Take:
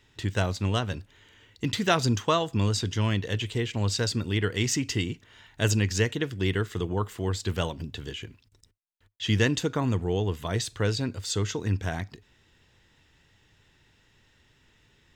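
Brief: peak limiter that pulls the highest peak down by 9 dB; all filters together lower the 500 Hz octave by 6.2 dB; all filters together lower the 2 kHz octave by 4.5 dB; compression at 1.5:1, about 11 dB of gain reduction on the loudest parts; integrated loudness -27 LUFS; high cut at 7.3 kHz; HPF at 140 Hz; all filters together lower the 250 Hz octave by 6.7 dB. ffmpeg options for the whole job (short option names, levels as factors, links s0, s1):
-af "highpass=140,lowpass=7300,equalizer=f=250:t=o:g=-6.5,equalizer=f=500:t=o:g=-5.5,equalizer=f=2000:t=o:g=-5.5,acompressor=threshold=0.002:ratio=1.5,volume=7.08,alimiter=limit=0.2:level=0:latency=1"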